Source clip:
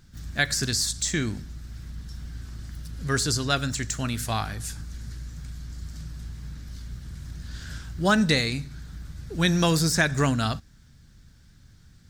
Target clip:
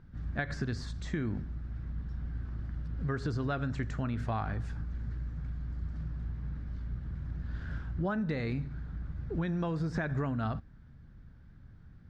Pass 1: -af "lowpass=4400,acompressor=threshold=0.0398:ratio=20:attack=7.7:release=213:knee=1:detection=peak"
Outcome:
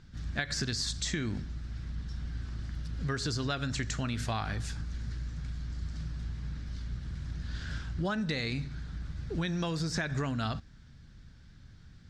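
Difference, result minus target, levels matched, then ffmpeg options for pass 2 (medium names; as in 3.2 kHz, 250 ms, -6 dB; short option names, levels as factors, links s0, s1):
4 kHz band +14.0 dB
-af "lowpass=1400,acompressor=threshold=0.0398:ratio=20:attack=7.7:release=213:knee=1:detection=peak"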